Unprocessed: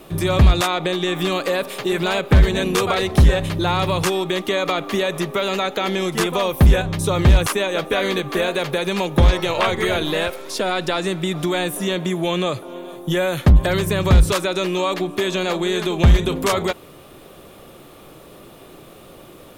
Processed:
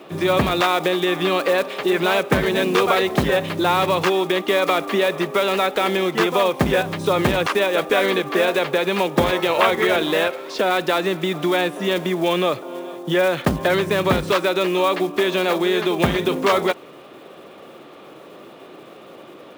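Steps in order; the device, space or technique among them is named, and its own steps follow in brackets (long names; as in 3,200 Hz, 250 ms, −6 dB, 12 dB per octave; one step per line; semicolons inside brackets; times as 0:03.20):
early digital voice recorder (band-pass filter 240–3,400 Hz; one scale factor per block 5 bits)
level +3 dB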